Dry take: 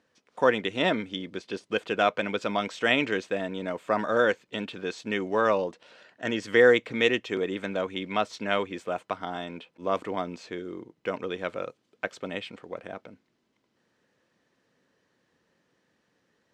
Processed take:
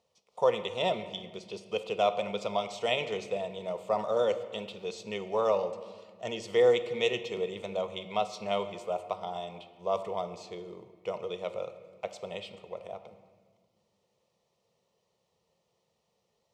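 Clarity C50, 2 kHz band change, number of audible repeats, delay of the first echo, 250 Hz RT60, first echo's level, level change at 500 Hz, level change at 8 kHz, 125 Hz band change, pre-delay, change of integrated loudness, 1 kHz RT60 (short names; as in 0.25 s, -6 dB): 11.5 dB, -12.0 dB, none, none, 2.8 s, none, -2.5 dB, n/a, -5.5 dB, 4 ms, -4.0 dB, 1.5 s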